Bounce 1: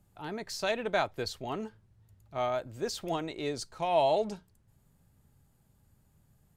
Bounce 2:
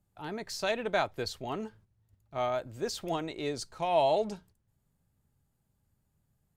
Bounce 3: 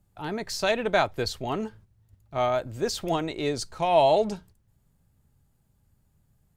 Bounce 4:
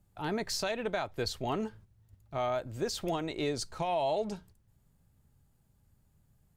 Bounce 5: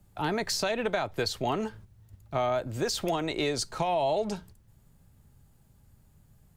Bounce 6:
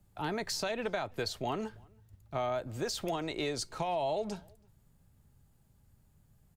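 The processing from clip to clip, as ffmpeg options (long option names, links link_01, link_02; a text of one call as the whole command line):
ffmpeg -i in.wav -af "agate=range=-9dB:threshold=-57dB:ratio=16:detection=peak" out.wav
ffmpeg -i in.wav -af "lowshelf=frequency=94:gain=5.5,volume=6dB" out.wav
ffmpeg -i in.wav -af "alimiter=limit=-21dB:level=0:latency=1:release=323,volume=-1.5dB" out.wav
ffmpeg -i in.wav -filter_complex "[0:a]acrossover=split=100|550[link_01][link_02][link_03];[link_01]acompressor=threshold=-56dB:ratio=4[link_04];[link_02]acompressor=threshold=-39dB:ratio=4[link_05];[link_03]acompressor=threshold=-36dB:ratio=4[link_06];[link_04][link_05][link_06]amix=inputs=3:normalize=0,volume=8dB" out.wav
ffmpeg -i in.wav -filter_complex "[0:a]asplit=2[link_01][link_02];[link_02]adelay=326.5,volume=-29dB,highshelf=frequency=4000:gain=-7.35[link_03];[link_01][link_03]amix=inputs=2:normalize=0,volume=-5.5dB" out.wav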